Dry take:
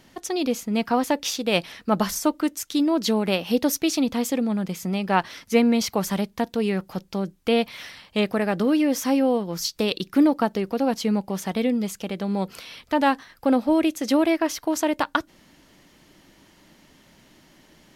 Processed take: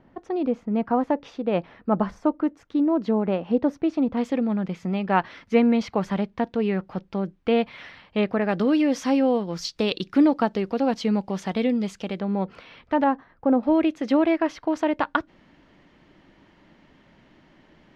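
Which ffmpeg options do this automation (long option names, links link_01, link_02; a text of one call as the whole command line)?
ffmpeg -i in.wav -af "asetnsamples=nb_out_samples=441:pad=0,asendcmd='4.17 lowpass f 2400;8.49 lowpass f 4400;12.2 lowpass f 2000;13.04 lowpass f 1100;13.63 lowpass f 2500',lowpass=1200" out.wav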